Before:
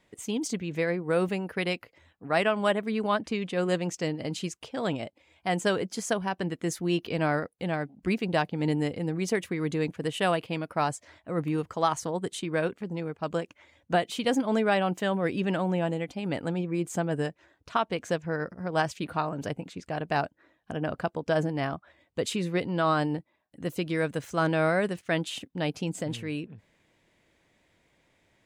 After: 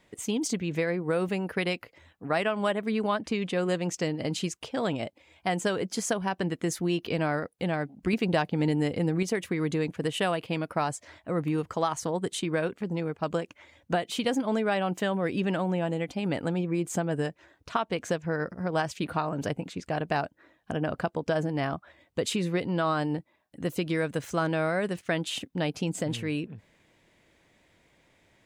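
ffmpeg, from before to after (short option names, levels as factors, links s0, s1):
-filter_complex "[0:a]asettb=1/sr,asplit=3[s0][s1][s2];[s0]atrim=end=8.134[s3];[s1]atrim=start=8.13:end=9.23,asetpts=PTS-STARTPTS,afade=t=in:d=0.004:c=qsin,afade=t=out:st=1.096:d=0.004:c=qsin,acontrast=50[s4];[s2]atrim=start=9.226[s5];[s3][s4]acrossfade=d=0.004:c1=hsin:c2=qsin[s6];[s6][s5]acrossfade=d=0.004:c1=qsin:c2=hsin,acompressor=threshold=0.0398:ratio=3,volume=1.5"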